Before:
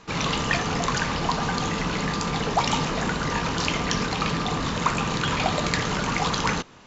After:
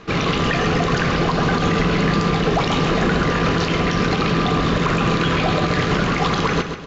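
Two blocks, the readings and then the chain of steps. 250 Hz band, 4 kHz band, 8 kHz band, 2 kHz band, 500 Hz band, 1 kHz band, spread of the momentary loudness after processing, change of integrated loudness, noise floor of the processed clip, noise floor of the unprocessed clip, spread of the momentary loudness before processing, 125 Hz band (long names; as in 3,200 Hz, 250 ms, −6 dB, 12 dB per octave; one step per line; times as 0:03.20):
+8.5 dB, +3.0 dB, can't be measured, +5.5 dB, +9.0 dB, +4.5 dB, 1 LU, +6.0 dB, −22 dBFS, −30 dBFS, 2 LU, +8.5 dB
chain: parametric band 380 Hz +5 dB 0.43 octaves
notch filter 910 Hz, Q 5.2
brickwall limiter −17.5 dBFS, peak gain reduction 9.5 dB
high-frequency loss of the air 140 metres
repeating echo 132 ms, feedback 44%, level −8.5 dB
level +8.5 dB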